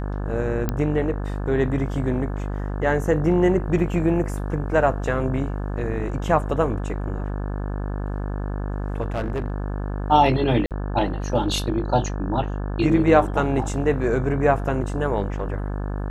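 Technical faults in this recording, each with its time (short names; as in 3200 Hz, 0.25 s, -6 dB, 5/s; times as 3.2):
buzz 50 Hz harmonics 35 -27 dBFS
0.69 pop -10 dBFS
9.01–9.66 clipped -21 dBFS
10.66–10.71 gap 48 ms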